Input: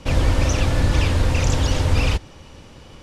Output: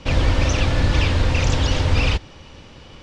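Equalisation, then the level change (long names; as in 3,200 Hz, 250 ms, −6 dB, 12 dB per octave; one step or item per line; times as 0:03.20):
low-pass filter 4,000 Hz 12 dB per octave
high-shelf EQ 3,000 Hz +9 dB
0.0 dB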